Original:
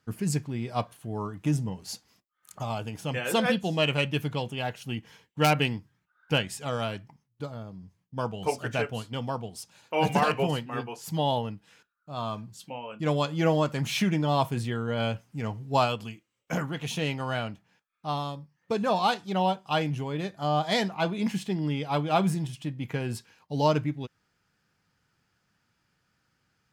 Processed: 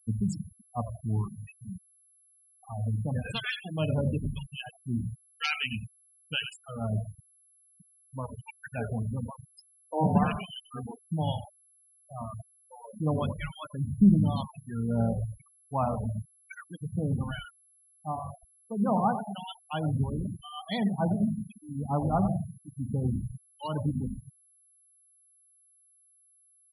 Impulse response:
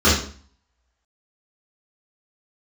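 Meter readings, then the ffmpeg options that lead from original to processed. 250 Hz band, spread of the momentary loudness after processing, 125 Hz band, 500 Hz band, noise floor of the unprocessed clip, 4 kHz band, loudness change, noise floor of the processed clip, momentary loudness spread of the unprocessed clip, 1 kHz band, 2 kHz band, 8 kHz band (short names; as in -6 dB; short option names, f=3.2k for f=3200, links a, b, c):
+0.5 dB, 16 LU, +0.5 dB, -7.5 dB, -77 dBFS, -7.0 dB, -2.5 dB, -64 dBFS, 14 LU, -6.0 dB, -6.5 dB, -11.0 dB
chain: -filter_complex "[0:a]acrossover=split=1300[a][b];[a]aeval=exprs='val(0)*(1-1/2+1/2*cos(2*PI*1*n/s))':c=same[c];[b]aeval=exprs='val(0)*(1-1/2-1/2*cos(2*PI*1*n/s))':c=same[d];[c][d]amix=inputs=2:normalize=0,equalizer=f=110:w=0.3:g=-5,asplit=5[e][f][g][h][i];[f]adelay=92,afreqshift=-51,volume=-9dB[j];[g]adelay=184,afreqshift=-102,volume=-18.6dB[k];[h]adelay=276,afreqshift=-153,volume=-28.3dB[l];[i]adelay=368,afreqshift=-204,volume=-37.9dB[m];[e][j][k][l][m]amix=inputs=5:normalize=0,asplit=2[n][o];[1:a]atrim=start_sample=2205,asetrate=22491,aresample=44100[p];[o][p]afir=irnorm=-1:irlink=0,volume=-37.5dB[q];[n][q]amix=inputs=2:normalize=0,afftfilt=real='re*gte(hypot(re,im),0.0398)':imag='im*gte(hypot(re,im),0.0398)':win_size=1024:overlap=0.75,aeval=exprs='val(0)+0.000891*sin(2*PI*11000*n/s)':c=same,lowshelf=f=280:t=q:w=1.5:g=8"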